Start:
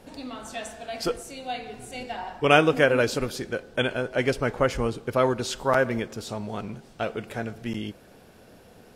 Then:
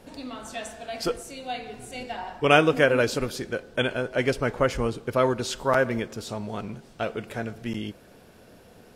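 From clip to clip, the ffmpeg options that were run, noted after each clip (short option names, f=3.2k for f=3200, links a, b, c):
-af "bandreject=f=790:w=23"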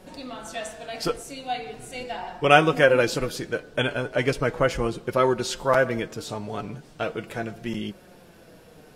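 -af "flanger=delay=5.3:depth=1.7:regen=43:speed=0.38:shape=triangular,volume=5.5dB"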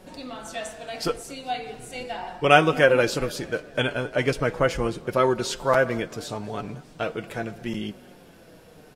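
-filter_complex "[0:a]asplit=5[a][b][c][d][e];[b]adelay=220,afreqshift=32,volume=-23dB[f];[c]adelay=440,afreqshift=64,volume=-28.2dB[g];[d]adelay=660,afreqshift=96,volume=-33.4dB[h];[e]adelay=880,afreqshift=128,volume=-38.6dB[i];[a][f][g][h][i]amix=inputs=5:normalize=0"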